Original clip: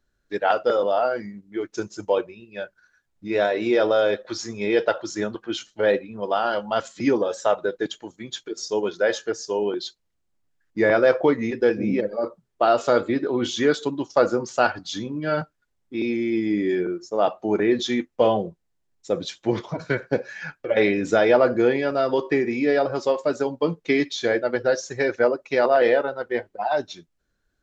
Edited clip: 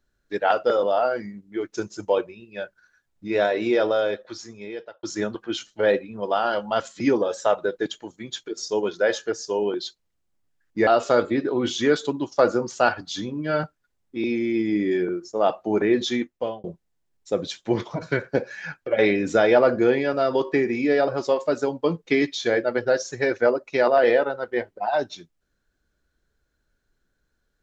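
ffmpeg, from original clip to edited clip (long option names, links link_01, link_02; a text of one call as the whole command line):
ffmpeg -i in.wav -filter_complex "[0:a]asplit=4[link_01][link_02][link_03][link_04];[link_01]atrim=end=5.03,asetpts=PTS-STARTPTS,afade=type=out:start_time=3.6:duration=1.43[link_05];[link_02]atrim=start=5.03:end=10.872,asetpts=PTS-STARTPTS,afade=type=in:duration=0.004:curve=hsin[link_06];[link_03]atrim=start=12.648:end=18.42,asetpts=PTS-STARTPTS,afade=type=out:start_time=5.242:duration=0.53[link_07];[link_04]atrim=start=18.42,asetpts=PTS-STARTPTS,afade=type=in:duration=0.004:curve=hsin[link_08];[link_05][link_06]concat=n=2:v=0:a=1[link_09];[link_07][link_08]concat=n=2:v=0:a=1[link_10];[link_09][link_10]acrossfade=duration=0.004:curve1=hsin:curve2=hsin" out.wav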